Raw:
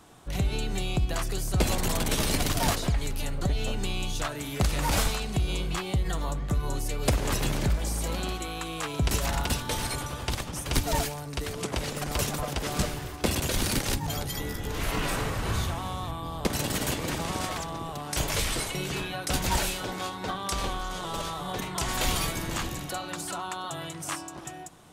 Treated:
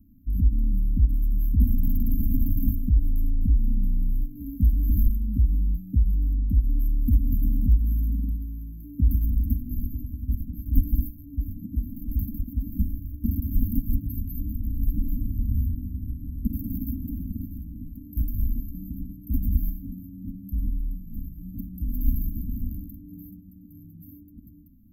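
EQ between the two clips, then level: brick-wall FIR band-stop 290–12000 Hz; low shelf 380 Hz +10.5 dB; fixed phaser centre 530 Hz, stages 6; 0.0 dB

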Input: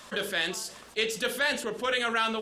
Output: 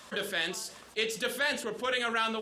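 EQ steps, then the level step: HPF 42 Hz; -2.5 dB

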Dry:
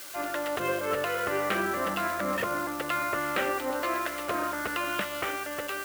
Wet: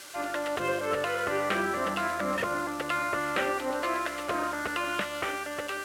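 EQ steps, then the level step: LPF 10000 Hz 12 dB/oct; 0.0 dB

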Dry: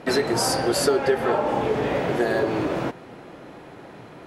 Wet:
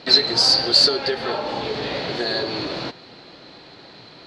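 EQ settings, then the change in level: synth low-pass 4300 Hz, resonance Q 8.8; high shelf 2800 Hz +9.5 dB; -4.5 dB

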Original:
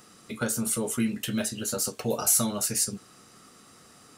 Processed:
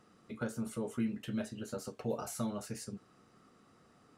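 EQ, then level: LPF 1300 Hz 6 dB/oct; -7.0 dB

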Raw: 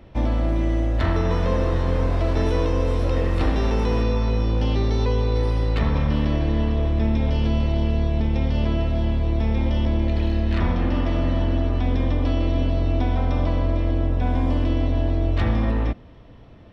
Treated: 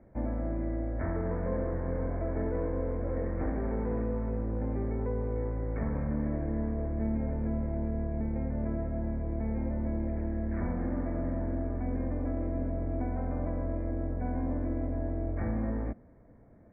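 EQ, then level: rippled Chebyshev low-pass 2300 Hz, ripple 6 dB; air absorption 430 m; bell 220 Hz +5.5 dB 0.91 oct; -7.0 dB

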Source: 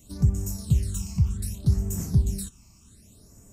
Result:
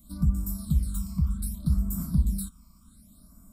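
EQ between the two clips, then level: fixed phaser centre 550 Hz, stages 8; fixed phaser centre 1800 Hz, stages 6; +4.5 dB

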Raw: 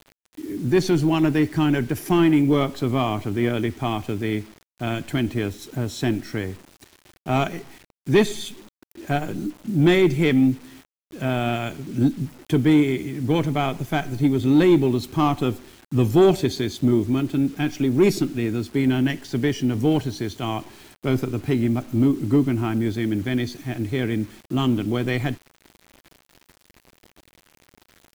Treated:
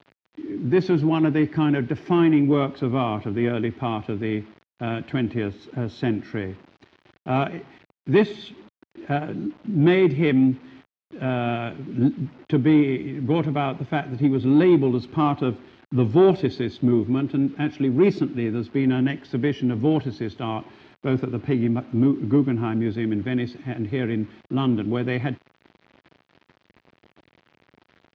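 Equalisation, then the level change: HPF 96 Hz; LPF 5000 Hz 12 dB/oct; air absorption 210 m; 0.0 dB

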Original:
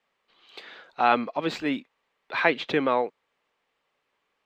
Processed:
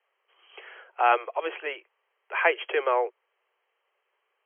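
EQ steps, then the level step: steep high-pass 360 Hz 96 dB/oct; brick-wall FIR low-pass 3300 Hz; 0.0 dB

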